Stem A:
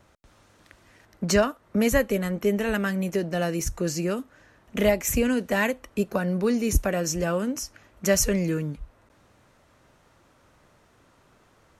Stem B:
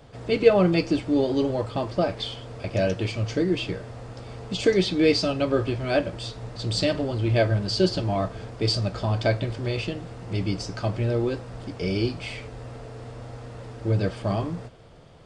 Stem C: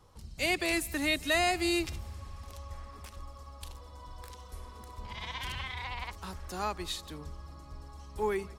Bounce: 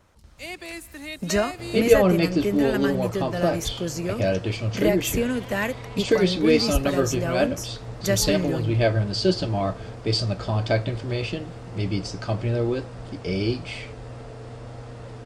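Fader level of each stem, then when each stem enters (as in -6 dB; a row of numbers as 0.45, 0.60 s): -2.0, +0.5, -6.5 dB; 0.00, 1.45, 0.00 s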